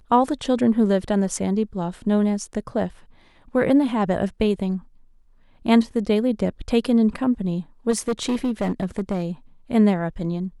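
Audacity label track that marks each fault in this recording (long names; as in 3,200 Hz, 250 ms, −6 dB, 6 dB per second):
7.900000	9.250000	clipping −18 dBFS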